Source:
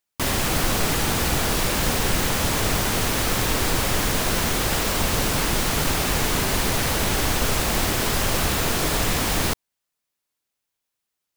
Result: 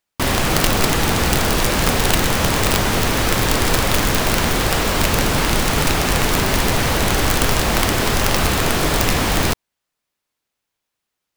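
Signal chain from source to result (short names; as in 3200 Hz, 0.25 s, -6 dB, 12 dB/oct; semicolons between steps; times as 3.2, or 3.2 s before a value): high shelf 5300 Hz -7.5 dB; wrapped overs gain 13.5 dB; gain +6 dB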